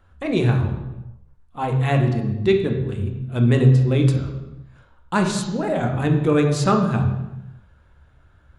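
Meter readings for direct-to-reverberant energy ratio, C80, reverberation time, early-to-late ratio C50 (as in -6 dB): 3.0 dB, 9.0 dB, 1.1 s, 7.0 dB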